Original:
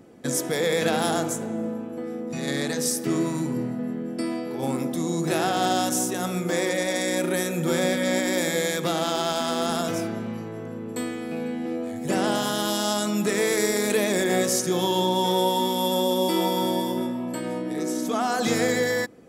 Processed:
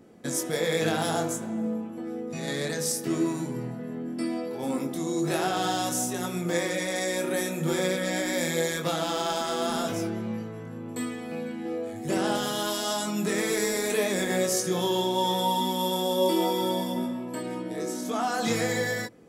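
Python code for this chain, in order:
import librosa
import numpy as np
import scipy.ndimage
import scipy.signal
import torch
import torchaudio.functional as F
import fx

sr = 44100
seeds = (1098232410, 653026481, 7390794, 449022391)

y = fx.chorus_voices(x, sr, voices=4, hz=0.14, base_ms=22, depth_ms=4.9, mix_pct=40)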